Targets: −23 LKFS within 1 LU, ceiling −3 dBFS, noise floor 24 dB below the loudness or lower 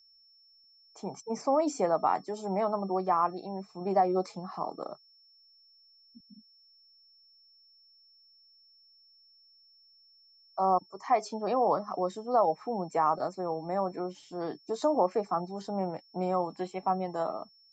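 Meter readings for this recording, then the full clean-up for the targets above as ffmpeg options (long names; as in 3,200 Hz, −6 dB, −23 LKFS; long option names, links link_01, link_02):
interfering tone 5,400 Hz; level of the tone −59 dBFS; integrated loudness −31.0 LKFS; sample peak −13.5 dBFS; target loudness −23.0 LKFS
→ -af "bandreject=frequency=5400:width=30"
-af "volume=8dB"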